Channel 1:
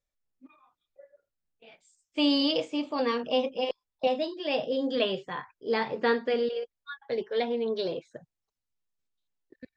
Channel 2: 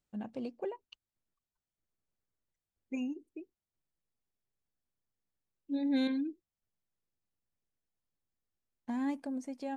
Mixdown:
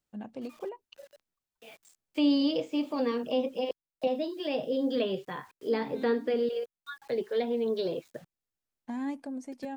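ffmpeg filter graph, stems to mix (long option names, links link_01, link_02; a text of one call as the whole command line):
ffmpeg -i stem1.wav -i stem2.wav -filter_complex "[0:a]acrusher=bits=9:mix=0:aa=0.000001,volume=2.5dB,asplit=2[link_01][link_02];[1:a]volume=1dB[link_03];[link_02]apad=whole_len=430775[link_04];[link_03][link_04]sidechaincompress=threshold=-31dB:ratio=8:attack=16:release=1340[link_05];[link_01][link_05]amix=inputs=2:normalize=0,lowshelf=frequency=150:gain=-4,acrossover=split=480[link_06][link_07];[link_07]acompressor=threshold=-40dB:ratio=2.5[link_08];[link_06][link_08]amix=inputs=2:normalize=0" out.wav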